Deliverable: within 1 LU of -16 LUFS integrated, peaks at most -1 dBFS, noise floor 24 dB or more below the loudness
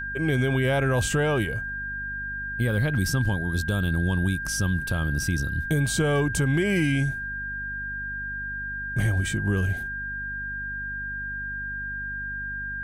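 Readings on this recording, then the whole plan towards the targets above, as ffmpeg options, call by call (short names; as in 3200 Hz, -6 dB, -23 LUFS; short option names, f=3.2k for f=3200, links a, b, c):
hum 50 Hz; harmonics up to 250 Hz; hum level -39 dBFS; steady tone 1600 Hz; tone level -30 dBFS; loudness -26.5 LUFS; peak -12.0 dBFS; loudness target -16.0 LUFS
-> -af "bandreject=f=50:t=h:w=4,bandreject=f=100:t=h:w=4,bandreject=f=150:t=h:w=4,bandreject=f=200:t=h:w=4,bandreject=f=250:t=h:w=4"
-af "bandreject=f=1.6k:w=30"
-af "volume=10.5dB"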